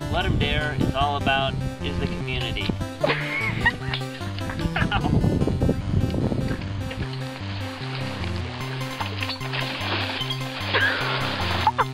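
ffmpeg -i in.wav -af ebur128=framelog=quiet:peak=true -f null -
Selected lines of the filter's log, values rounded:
Integrated loudness:
  I:         -24.9 LUFS
  Threshold: -34.9 LUFS
Loudness range:
  LRA:         4.8 LU
  Threshold: -45.4 LUFS
  LRA low:   -28.7 LUFS
  LRA high:  -24.0 LUFS
True peak:
  Peak:       -7.6 dBFS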